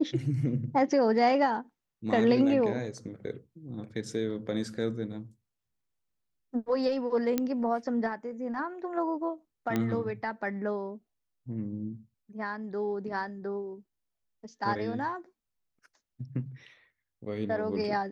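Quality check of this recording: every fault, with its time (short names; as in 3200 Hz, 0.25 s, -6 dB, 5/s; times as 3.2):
7.38 pop -14 dBFS
9.76 pop -16 dBFS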